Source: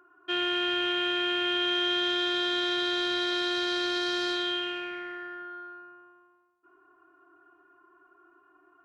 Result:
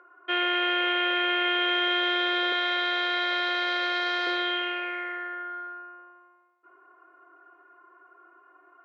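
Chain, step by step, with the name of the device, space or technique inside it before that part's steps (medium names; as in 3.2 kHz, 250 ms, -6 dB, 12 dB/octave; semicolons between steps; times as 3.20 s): 2.52–4.27 s: high-pass 430 Hz 12 dB/octave; tin-can telephone (band-pass 530–2500 Hz; small resonant body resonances 520/2100 Hz, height 13 dB, ringing for 40 ms); trim +6 dB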